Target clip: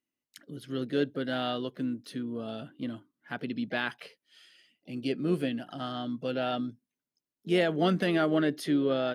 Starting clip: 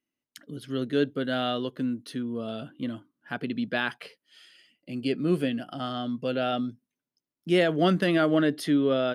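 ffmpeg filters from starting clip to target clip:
ffmpeg -i in.wav -filter_complex "[0:a]asplit=2[link_01][link_02];[link_02]asetrate=55563,aresample=44100,atempo=0.793701,volume=-16dB[link_03];[link_01][link_03]amix=inputs=2:normalize=0,volume=-3.5dB" out.wav

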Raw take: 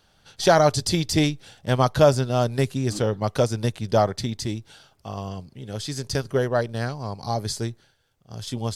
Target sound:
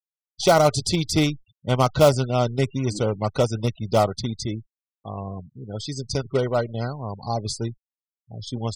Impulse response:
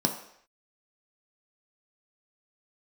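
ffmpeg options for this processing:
-af "acrusher=bits=3:mode=log:mix=0:aa=0.000001,asuperstop=centerf=1700:order=20:qfactor=5.1,afftfilt=real='re*gte(hypot(re,im),0.0224)':imag='im*gte(hypot(re,im),0.0224)':win_size=1024:overlap=0.75"

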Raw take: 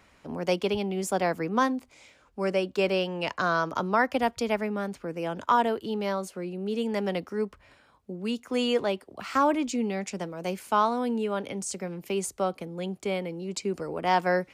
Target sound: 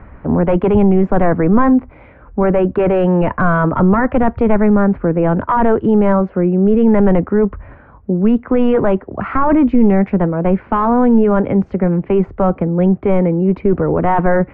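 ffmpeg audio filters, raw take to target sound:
ffmpeg -i in.wav -af "apsyclip=26.5dB,lowpass=frequency=1800:width=0.5412,lowpass=frequency=1800:width=1.3066,aemphasis=mode=reproduction:type=bsi,volume=-10dB" out.wav

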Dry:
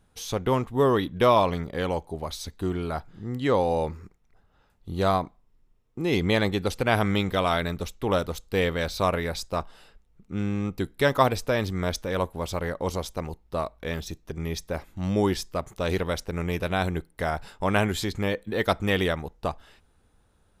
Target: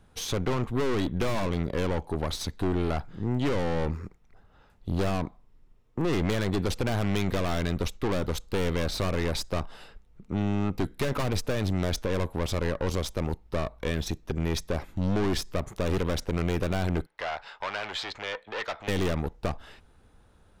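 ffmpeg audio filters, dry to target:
ffmpeg -i in.wav -filter_complex "[0:a]highshelf=frequency=6300:gain=-7.5,aeval=exprs='(tanh(39.8*val(0)+0.65)-tanh(0.65))/39.8':channel_layout=same,asettb=1/sr,asplit=3[link_01][link_02][link_03];[link_01]atrim=end=17.064[link_04];[link_02]atrim=start=17.06:end=18.88,asetpts=PTS-STARTPTS,afade=type=in:duration=0.004:curve=qsin,afade=type=out:start_time=1.816:duration=0.004:curve=qsin,acrossover=split=580 5500:gain=0.0708 1 0.0631[link_05][link_06][link_07];[link_05][link_06][link_07]amix=inputs=3:normalize=0[link_08];[link_03]atrim=start=18.876[link_09];[link_04][link_08]acrossfade=duration=0.004:curve1=hsin:curve2=qsin[link_10];[link_10][link_09]acrossfade=duration=0.004:curve1=qsin:curve2=hsin,acrossover=split=320[link_11][link_12];[link_12]acompressor=threshold=-37dB:ratio=6[link_13];[link_11][link_13]amix=inputs=2:normalize=0,volume=9dB" out.wav

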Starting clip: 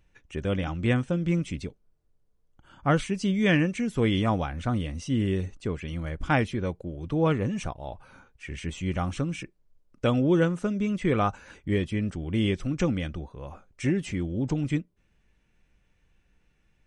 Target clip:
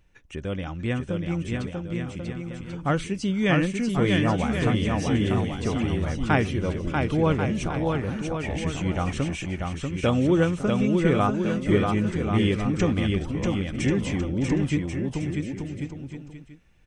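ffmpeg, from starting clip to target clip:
ffmpeg -i in.wav -filter_complex "[0:a]asplit=2[link_01][link_02];[link_02]acompressor=threshold=-39dB:ratio=6,volume=1.5dB[link_03];[link_01][link_03]amix=inputs=2:normalize=0,aecho=1:1:640|1088|1402|1621|1775:0.631|0.398|0.251|0.158|0.1,dynaudnorm=framelen=360:gausssize=17:maxgain=6.5dB,asettb=1/sr,asplit=3[link_04][link_05][link_06];[link_04]atrim=end=6.594[link_07];[link_05]atrim=start=6.59:end=7.82,asetpts=PTS-STARTPTS,afade=type=in:duration=0.004:curve=qsin,afade=type=out:start_time=1.226:duration=0.004:curve=qsin,bandreject=frequency=1800:width=12[link_08];[link_06]atrim=start=7.816[link_09];[link_07][link_08]acrossfade=duration=0.004:curve1=hsin:curve2=qsin[link_10];[link_10][link_09]acrossfade=duration=0.004:curve1=qsin:curve2=hsin,volume=-4.5dB" out.wav

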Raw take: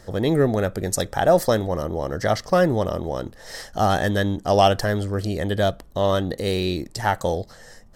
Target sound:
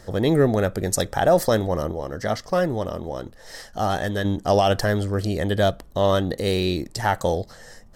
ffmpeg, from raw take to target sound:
ffmpeg -i in.wav -filter_complex "[0:a]asettb=1/sr,asplit=3[link_01][link_02][link_03];[link_01]atrim=end=1.924[link_04];[link_02]atrim=start=1.92:end=4.25,asetpts=PTS-STARTPTS,afade=type=in:duration=0.004:curve=qsin,afade=type=out:start_time=2.326:duration=0.004:curve=qsin,flanger=delay=1.3:depth=3.6:regen=80:speed=1.4:shape=triangular[link_05];[link_03]atrim=start=4.246[link_06];[link_04][link_05]acrossfade=duration=0.004:curve1=hsin:curve2=qsin[link_07];[link_07][link_06]acrossfade=duration=0.004:curve1=qsin:curve2=hsin,alimiter=level_in=8dB:limit=-1dB:release=50:level=0:latency=1,volume=-7dB" out.wav

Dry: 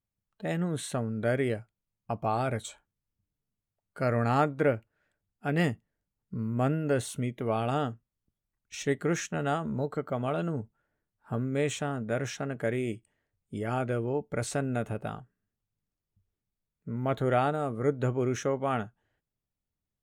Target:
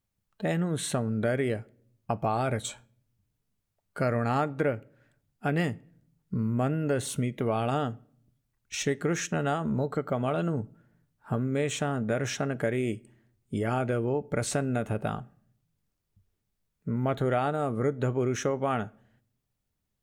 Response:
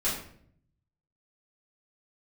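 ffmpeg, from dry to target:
-filter_complex "[0:a]acompressor=threshold=-32dB:ratio=3,asplit=2[link_01][link_02];[1:a]atrim=start_sample=2205,adelay=5[link_03];[link_02][link_03]afir=irnorm=-1:irlink=0,volume=-30dB[link_04];[link_01][link_04]amix=inputs=2:normalize=0,volume=6.5dB"

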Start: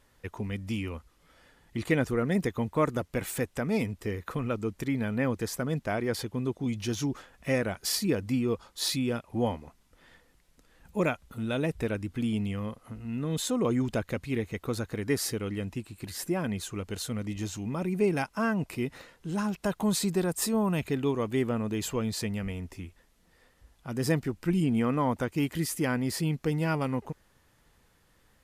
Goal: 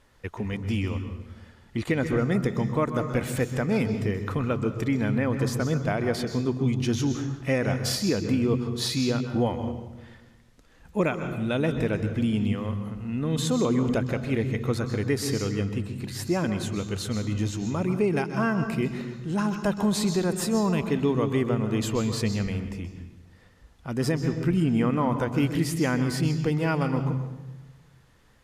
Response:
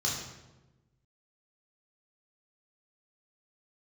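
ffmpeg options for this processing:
-filter_complex "[0:a]asplit=2[link_01][link_02];[1:a]atrim=start_sample=2205,adelay=127[link_03];[link_02][link_03]afir=irnorm=-1:irlink=0,volume=-15.5dB[link_04];[link_01][link_04]amix=inputs=2:normalize=0,alimiter=limit=-18dB:level=0:latency=1:release=195,highshelf=frequency=9500:gain=-11,volume=4dB"

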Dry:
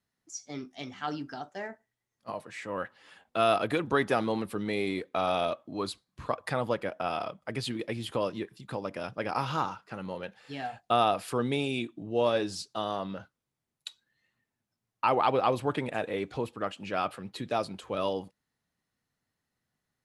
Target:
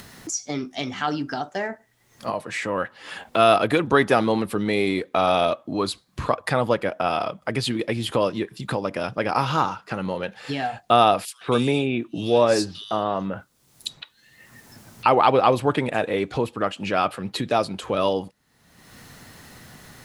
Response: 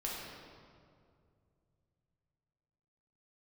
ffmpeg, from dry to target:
-filter_complex "[0:a]acompressor=mode=upward:threshold=-30dB:ratio=2.5,asettb=1/sr,asplit=3[link_01][link_02][link_03];[link_01]atrim=end=11.254[link_04];[link_02]atrim=start=11.25:end=15.06,asetpts=PTS-STARTPTS,afade=type=in:duration=0.004:curve=qsin,afade=type=out:start_time=3.806:duration=0.004:curve=qsin,acrossover=split=2900[link_05][link_06];[link_05]adelay=160[link_07];[link_07][link_06]amix=inputs=2:normalize=0,atrim=end_sample=168021[link_08];[link_03]atrim=start=15.056[link_09];[link_04][link_08]acrossfade=duration=0.004:curve1=hsin:curve2=qsin[link_10];[link_10][link_09]acrossfade=duration=0.004:curve1=qsin:curve2=hsin,volume=8.5dB"

